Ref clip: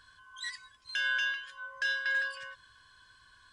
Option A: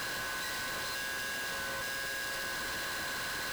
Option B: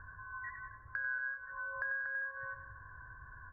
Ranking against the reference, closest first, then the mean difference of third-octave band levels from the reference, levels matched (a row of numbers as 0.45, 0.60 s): B, A; 10.0, 23.0 dB